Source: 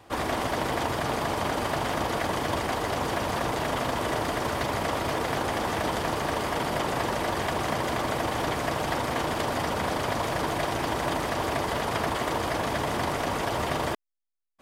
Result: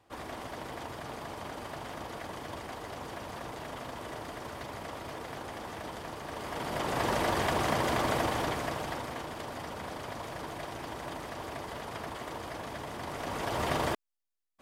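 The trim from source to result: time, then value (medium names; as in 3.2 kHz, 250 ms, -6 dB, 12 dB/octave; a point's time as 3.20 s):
6.24 s -13 dB
7.12 s -1 dB
8.18 s -1 dB
9.28 s -12 dB
12.99 s -12 dB
13.70 s -2 dB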